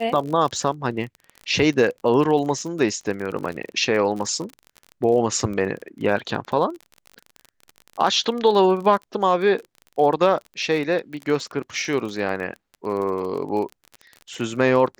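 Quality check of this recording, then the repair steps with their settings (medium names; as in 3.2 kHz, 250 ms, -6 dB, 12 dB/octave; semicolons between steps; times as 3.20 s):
crackle 32 per s -29 dBFS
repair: de-click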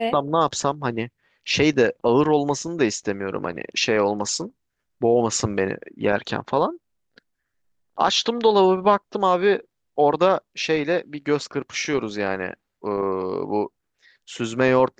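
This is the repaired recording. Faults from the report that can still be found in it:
nothing left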